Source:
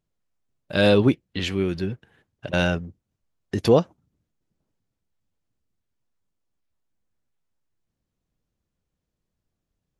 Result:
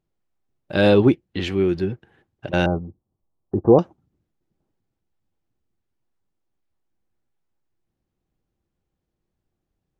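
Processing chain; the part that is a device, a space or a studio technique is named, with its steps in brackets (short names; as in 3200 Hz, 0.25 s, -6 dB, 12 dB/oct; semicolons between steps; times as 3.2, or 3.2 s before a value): 2.66–3.79 steep low-pass 1200 Hz 48 dB/oct; inside a helmet (high shelf 4500 Hz -9.5 dB; small resonant body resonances 350/790 Hz, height 7 dB); gain +1.5 dB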